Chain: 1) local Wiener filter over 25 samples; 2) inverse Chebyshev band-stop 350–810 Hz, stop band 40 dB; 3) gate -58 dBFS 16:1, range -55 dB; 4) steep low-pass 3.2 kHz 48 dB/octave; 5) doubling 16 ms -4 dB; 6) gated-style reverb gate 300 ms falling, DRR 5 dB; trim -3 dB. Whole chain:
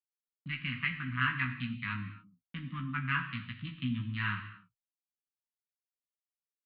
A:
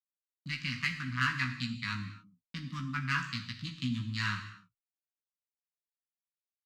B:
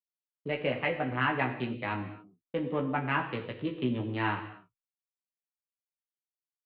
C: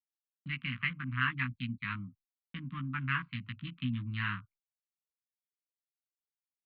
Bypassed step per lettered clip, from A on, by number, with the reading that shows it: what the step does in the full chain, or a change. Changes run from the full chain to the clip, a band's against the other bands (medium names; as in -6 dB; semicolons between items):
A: 4, 4 kHz band +4.5 dB; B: 2, 1 kHz band +7.0 dB; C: 6, momentary loudness spread change -3 LU